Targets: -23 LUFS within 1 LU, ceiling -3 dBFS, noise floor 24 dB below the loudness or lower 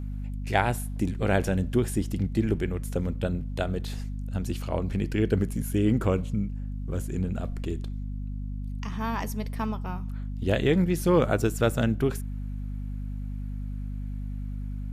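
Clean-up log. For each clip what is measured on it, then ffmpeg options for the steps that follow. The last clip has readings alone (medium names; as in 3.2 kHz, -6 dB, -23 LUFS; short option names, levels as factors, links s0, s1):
hum 50 Hz; highest harmonic 250 Hz; hum level -30 dBFS; loudness -29.0 LUFS; peak level -8.5 dBFS; loudness target -23.0 LUFS
-> -af "bandreject=f=50:t=h:w=4,bandreject=f=100:t=h:w=4,bandreject=f=150:t=h:w=4,bandreject=f=200:t=h:w=4,bandreject=f=250:t=h:w=4"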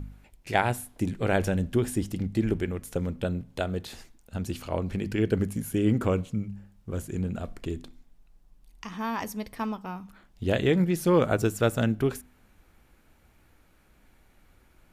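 hum not found; loudness -28.5 LUFS; peak level -7.5 dBFS; loudness target -23.0 LUFS
-> -af "volume=1.88,alimiter=limit=0.708:level=0:latency=1"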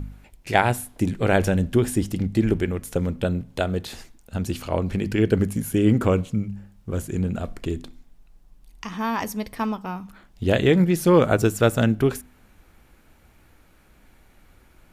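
loudness -23.0 LUFS; peak level -3.0 dBFS; noise floor -56 dBFS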